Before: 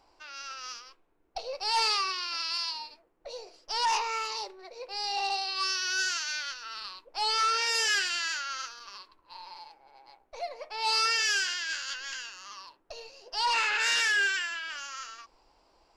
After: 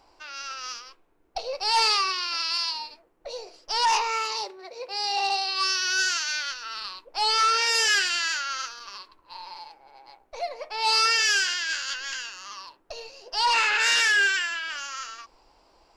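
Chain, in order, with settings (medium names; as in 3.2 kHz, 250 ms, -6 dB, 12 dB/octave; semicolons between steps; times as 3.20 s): 4.17–6.02 s: high-pass 56 Hz; trim +5 dB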